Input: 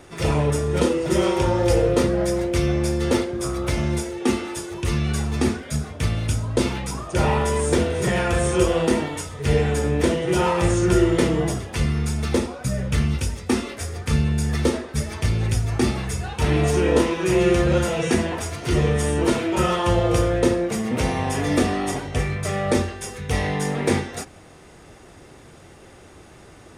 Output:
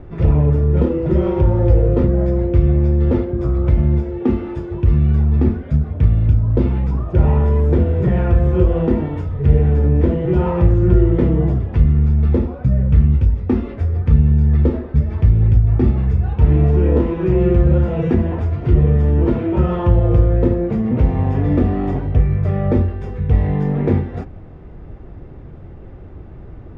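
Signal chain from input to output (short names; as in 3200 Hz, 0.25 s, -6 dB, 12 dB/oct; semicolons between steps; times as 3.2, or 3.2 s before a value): LPF 3000 Hz 12 dB/oct; tilt -4.5 dB/oct; compressor 1.5:1, threshold -15 dBFS, peak gain reduction 6 dB; gain -1.5 dB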